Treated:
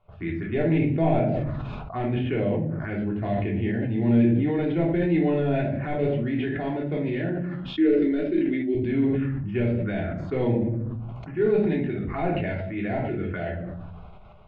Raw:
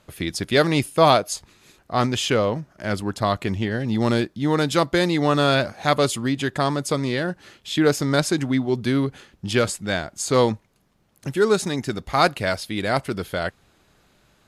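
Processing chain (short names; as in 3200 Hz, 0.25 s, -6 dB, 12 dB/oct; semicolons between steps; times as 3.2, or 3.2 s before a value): de-esser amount 70%; LPF 2400 Hz 24 dB/oct; envelope phaser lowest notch 290 Hz, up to 1200 Hz, full sweep at -21.5 dBFS; 7.74–8.75 fixed phaser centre 350 Hz, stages 4; shoebox room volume 530 m³, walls furnished, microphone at 3.3 m; sustainer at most 23 dB/s; gain -7.5 dB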